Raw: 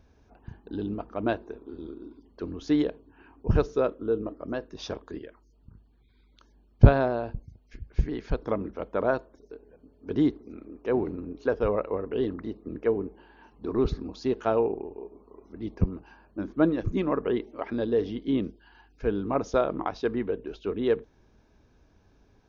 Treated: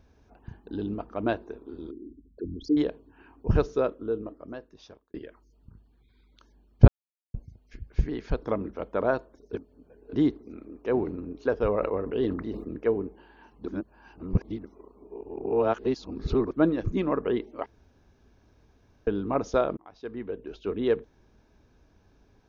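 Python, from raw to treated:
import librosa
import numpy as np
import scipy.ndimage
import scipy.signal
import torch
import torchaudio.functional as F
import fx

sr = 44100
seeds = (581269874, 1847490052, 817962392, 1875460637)

y = fx.envelope_sharpen(x, sr, power=3.0, at=(1.91, 2.77))
y = fx.sustainer(y, sr, db_per_s=63.0, at=(11.6, 12.73))
y = fx.edit(y, sr, fx.fade_out_span(start_s=3.73, length_s=1.41),
    fx.silence(start_s=6.88, length_s=0.46),
    fx.reverse_span(start_s=9.53, length_s=0.6),
    fx.reverse_span(start_s=13.68, length_s=2.83),
    fx.room_tone_fill(start_s=17.66, length_s=1.41),
    fx.fade_in_span(start_s=19.77, length_s=0.95), tone=tone)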